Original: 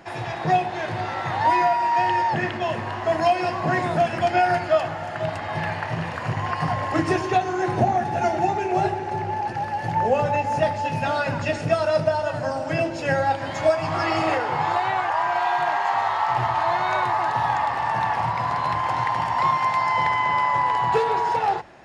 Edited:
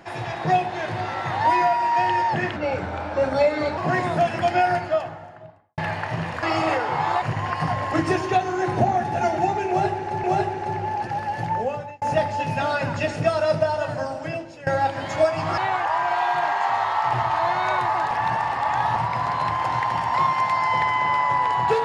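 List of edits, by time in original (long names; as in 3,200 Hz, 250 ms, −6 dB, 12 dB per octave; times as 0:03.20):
0:02.56–0:03.57: play speed 83%
0:04.30–0:05.57: fade out and dull
0:08.69–0:09.24: repeat, 2 plays
0:09.82–0:10.47: fade out
0:12.33–0:13.12: fade out, to −19.5 dB
0:14.03–0:14.82: move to 0:06.22
0:17.35–0:18.20: reverse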